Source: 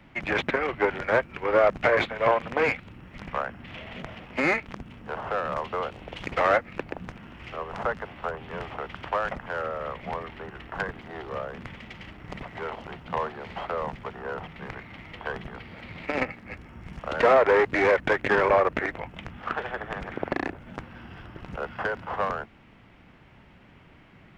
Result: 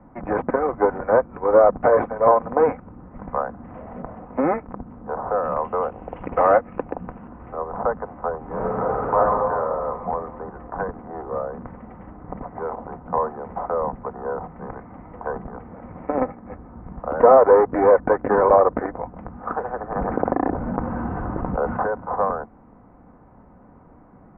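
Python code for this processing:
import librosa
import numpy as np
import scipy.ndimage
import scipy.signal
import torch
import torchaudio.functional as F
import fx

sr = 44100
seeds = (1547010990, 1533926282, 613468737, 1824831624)

y = fx.peak_eq(x, sr, hz=2800.0, db=12.0, octaves=0.77, at=(5.43, 7.28))
y = fx.reverb_throw(y, sr, start_s=8.39, length_s=0.78, rt60_s=2.7, drr_db=-6.5)
y = fx.env_flatten(y, sr, amount_pct=70, at=(19.95, 21.84))
y = scipy.signal.sosfilt(scipy.signal.cheby2(4, 70, 4700.0, 'lowpass', fs=sr, output='sos'), y)
y = fx.low_shelf(y, sr, hz=410.0, db=-5.0)
y = y + 0.32 * np.pad(y, (int(4.0 * sr / 1000.0), 0))[:len(y)]
y = y * librosa.db_to_amplitude(8.5)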